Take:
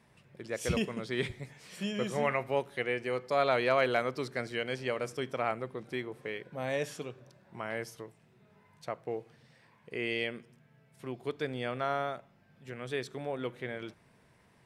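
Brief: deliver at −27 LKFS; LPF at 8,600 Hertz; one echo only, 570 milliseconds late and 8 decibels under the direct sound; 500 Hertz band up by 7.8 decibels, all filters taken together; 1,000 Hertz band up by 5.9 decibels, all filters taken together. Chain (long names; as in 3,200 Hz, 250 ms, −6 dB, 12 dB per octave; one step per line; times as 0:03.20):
low-pass filter 8,600 Hz
parametric band 500 Hz +8 dB
parametric band 1,000 Hz +5 dB
single-tap delay 570 ms −8 dB
level +1 dB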